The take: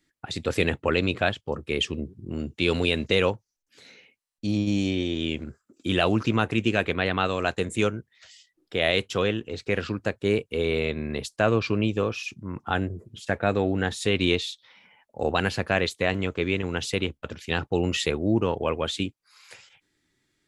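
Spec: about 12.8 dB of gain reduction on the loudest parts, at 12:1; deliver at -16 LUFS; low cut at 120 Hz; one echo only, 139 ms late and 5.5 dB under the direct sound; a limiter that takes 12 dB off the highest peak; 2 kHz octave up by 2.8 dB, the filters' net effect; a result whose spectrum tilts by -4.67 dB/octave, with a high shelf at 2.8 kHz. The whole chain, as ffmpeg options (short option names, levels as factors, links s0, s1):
-af "highpass=120,equalizer=f=2000:t=o:g=5,highshelf=f=2800:g=-3,acompressor=threshold=0.0316:ratio=12,alimiter=level_in=1.12:limit=0.0631:level=0:latency=1,volume=0.891,aecho=1:1:139:0.531,volume=11.2"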